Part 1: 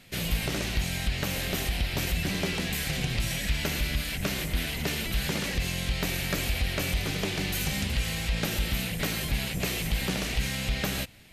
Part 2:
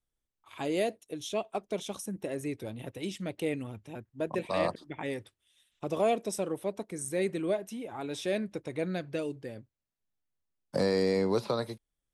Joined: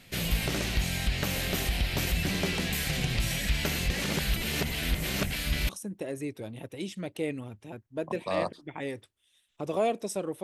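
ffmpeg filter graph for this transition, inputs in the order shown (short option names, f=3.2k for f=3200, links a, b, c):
-filter_complex "[0:a]apad=whole_dur=10.43,atrim=end=10.43,asplit=2[a][b];[a]atrim=end=3.792[c];[b]atrim=start=3.788:end=5.692,asetpts=PTS-STARTPTS,areverse[d];[1:a]atrim=start=1.918:end=6.66[e];[c][d]acrossfade=d=0.004:c1=hsin:c2=hsin[f];[f][e]acrossfade=d=0.004:c1=hsin:c2=hsin"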